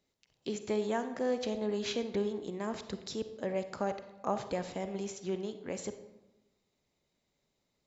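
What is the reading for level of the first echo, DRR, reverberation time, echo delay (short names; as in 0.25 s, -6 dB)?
none, 9.5 dB, 1.0 s, none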